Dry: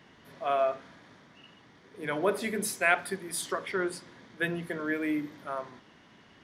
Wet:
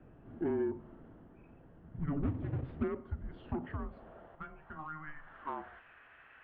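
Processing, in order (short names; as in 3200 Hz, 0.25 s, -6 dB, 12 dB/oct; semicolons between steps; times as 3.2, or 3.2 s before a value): 2.23–2.88 half-waves squared off; tilt shelf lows +3.5 dB, about 1400 Hz; compressor 8:1, threshold -32 dBFS, peak gain reduction 16.5 dB; band-pass sweep 530 Hz -> 2100 Hz, 3.22–5.84; soft clip -32.5 dBFS, distortion -18 dB; 4.35–5.07 resonator 78 Hz, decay 0.26 s, harmonics all, mix 70%; wow and flutter 17 cents; mistuned SSB -310 Hz 190–3500 Hz; gain +7 dB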